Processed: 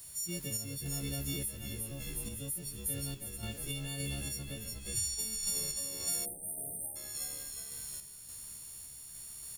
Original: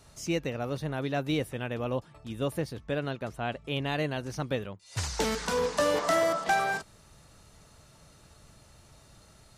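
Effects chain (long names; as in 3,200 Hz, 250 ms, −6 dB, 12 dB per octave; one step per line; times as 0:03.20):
every partial snapped to a pitch grid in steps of 4 semitones
drawn EQ curve 160 Hz 0 dB, 1,200 Hz −23 dB, 13,000 Hz +12 dB
echo with shifted repeats 361 ms, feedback 47%, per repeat −72 Hz, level −4.5 dB
downward compressor 2.5 to 1, threshold −34 dBFS, peak gain reduction 10.5 dB
background noise white −56 dBFS
sample-and-hold tremolo
time-frequency box erased 0:06.25–0:06.96, 880–7,200 Hz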